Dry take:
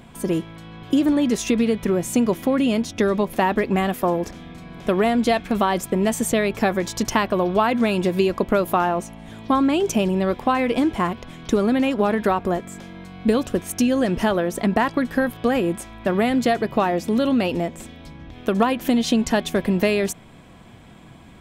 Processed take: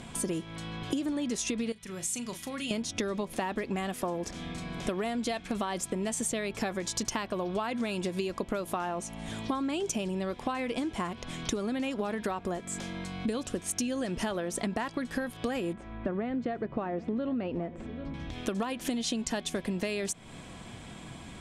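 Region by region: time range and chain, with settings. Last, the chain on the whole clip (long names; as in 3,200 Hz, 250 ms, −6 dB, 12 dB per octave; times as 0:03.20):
0:01.72–0:02.71: guitar amp tone stack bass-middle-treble 5-5-5 + double-tracking delay 37 ms −11 dB
0:15.73–0:18.14: low-pass filter 1,400 Hz + parametric band 890 Hz −4.5 dB 0.85 octaves + single-tap delay 792 ms −22.5 dB
whole clip: low-pass filter 9,900 Hz 24 dB per octave; high-shelf EQ 4,000 Hz +10.5 dB; downward compressor 6 to 1, threshold −30 dBFS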